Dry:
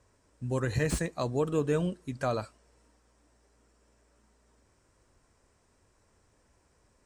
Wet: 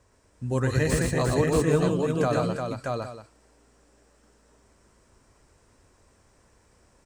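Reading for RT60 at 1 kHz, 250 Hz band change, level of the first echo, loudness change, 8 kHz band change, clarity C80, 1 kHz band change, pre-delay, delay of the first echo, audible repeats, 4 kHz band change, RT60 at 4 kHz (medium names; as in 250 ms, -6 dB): no reverb, +7.0 dB, -3.5 dB, +6.0 dB, +7.0 dB, no reverb, +7.0 dB, no reverb, 118 ms, 4, +7.0 dB, no reverb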